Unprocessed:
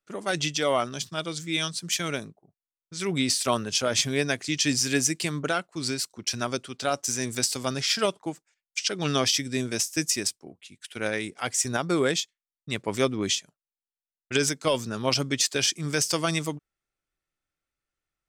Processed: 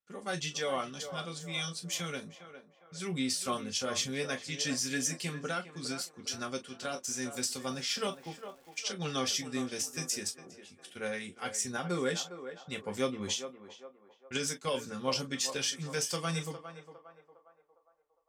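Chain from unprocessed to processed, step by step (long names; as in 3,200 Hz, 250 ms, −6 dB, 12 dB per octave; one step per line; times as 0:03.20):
0:07.39–0:08.80: surface crackle 150 per second −37 dBFS
notch comb filter 320 Hz
feedback echo with a band-pass in the loop 407 ms, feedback 49%, band-pass 750 Hz, level −8.5 dB
on a send at −4.5 dB: convolution reverb, pre-delay 3 ms
on the sum: level −8.5 dB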